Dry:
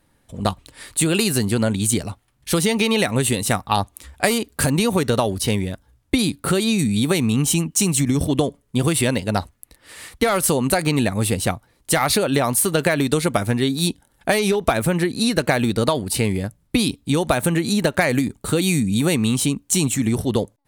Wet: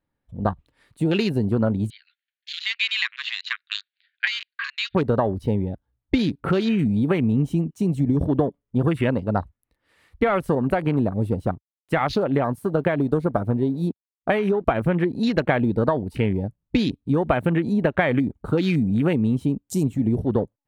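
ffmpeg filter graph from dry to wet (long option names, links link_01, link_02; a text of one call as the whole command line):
ffmpeg -i in.wav -filter_complex "[0:a]asettb=1/sr,asplit=3[link_01][link_02][link_03];[link_01]atrim=end=1.904[link_04];[link_02]atrim=start=1.9:end=4.95,asetpts=PTS-STARTPTS,afade=type=in:duration=0.004:curve=qsin,afade=type=out:start_time=3.046:duration=0.004:curve=qsin,asuperpass=centerf=2600:order=20:qfactor=0.83,highshelf=frequency=2700:gain=10.5[link_05];[link_03]atrim=start=4.946[link_06];[link_04][link_05]acrossfade=duration=0.004:curve1=hsin:curve2=qsin[link_07];[link_07][link_06]acrossfade=duration=0.004:curve1=qsin:curve2=hsin,asettb=1/sr,asplit=3[link_08][link_09][link_10];[link_08]atrim=end=10.554[link_11];[link_09]atrim=start=10.55:end=14.81,asetpts=PTS-STARTPTS,afade=type=in:duration=0.004:curve=qsin,afade=type=out:start_time=4.256:duration=0.004:curve=qsin,adynamicequalizer=threshold=0.02:dfrequency=2300:dqfactor=0.76:tfrequency=2300:tqfactor=0.76:attack=5:release=100:ratio=0.375:range=3.5:mode=cutabove:tftype=bell,aeval=exprs='sgn(val(0))*max(abs(val(0))-0.00841,0)':channel_layout=same[link_12];[link_10]atrim=start=14.806[link_13];[link_11][link_12]acrossfade=duration=0.004:curve1=hsin:curve2=qsin[link_14];[link_14][link_13]acrossfade=duration=0.004:curve1=qsin:curve2=hsin,highshelf=frequency=5300:gain=-7.5,afwtdn=0.0355,equalizer=frequency=8200:width_type=o:width=1.6:gain=-9.5,volume=-1dB" out.wav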